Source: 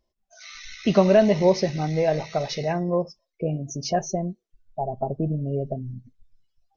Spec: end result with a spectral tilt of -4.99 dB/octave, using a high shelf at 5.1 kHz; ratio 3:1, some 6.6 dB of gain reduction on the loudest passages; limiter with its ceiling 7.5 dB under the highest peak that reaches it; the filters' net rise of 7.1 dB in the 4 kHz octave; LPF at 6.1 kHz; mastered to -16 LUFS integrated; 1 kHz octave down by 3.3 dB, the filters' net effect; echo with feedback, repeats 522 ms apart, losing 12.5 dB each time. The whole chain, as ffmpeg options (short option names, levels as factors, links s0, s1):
-af "lowpass=6100,equalizer=f=1000:t=o:g=-6,equalizer=f=4000:t=o:g=6.5,highshelf=f=5100:g=8,acompressor=threshold=0.0794:ratio=3,alimiter=limit=0.106:level=0:latency=1,aecho=1:1:522|1044|1566:0.237|0.0569|0.0137,volume=5.01"